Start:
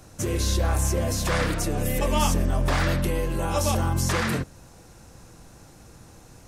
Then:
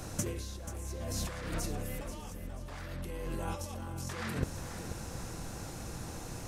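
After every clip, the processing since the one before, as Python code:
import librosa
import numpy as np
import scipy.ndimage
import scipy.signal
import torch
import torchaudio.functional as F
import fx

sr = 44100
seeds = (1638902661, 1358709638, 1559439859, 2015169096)

y = fx.over_compress(x, sr, threshold_db=-31.0, ratio=-0.5)
y = fx.echo_feedback(y, sr, ms=485, feedback_pct=36, wet_db=-11)
y = y * 10.0 ** (-4.0 / 20.0)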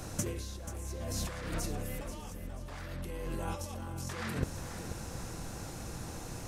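y = x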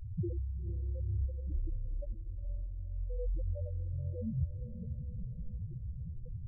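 y = fx.spec_topn(x, sr, count=2)
y = fx.echo_diffused(y, sr, ms=479, feedback_pct=41, wet_db=-10.5)
y = y * 10.0 ** (7.5 / 20.0)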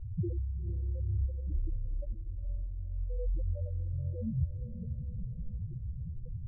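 y = scipy.signal.sosfilt(scipy.signal.bessel(2, 520.0, 'lowpass', norm='mag', fs=sr, output='sos'), x)
y = y * 10.0 ** (2.5 / 20.0)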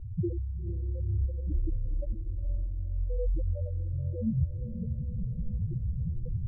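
y = fx.peak_eq(x, sr, hz=300.0, db=6.5, octaves=1.5)
y = fx.rider(y, sr, range_db=10, speed_s=2.0)
y = y * 10.0 ** (2.5 / 20.0)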